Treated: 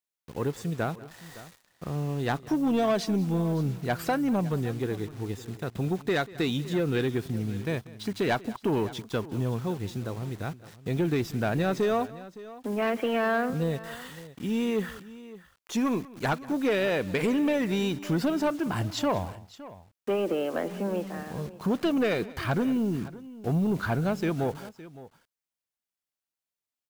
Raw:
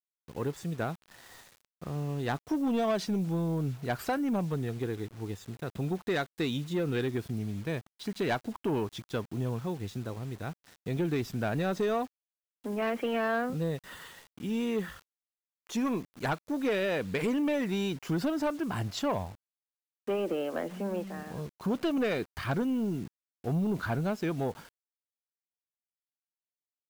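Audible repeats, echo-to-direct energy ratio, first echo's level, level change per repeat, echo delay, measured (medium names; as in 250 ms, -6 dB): 2, -15.5 dB, -20.0 dB, no regular repeats, 190 ms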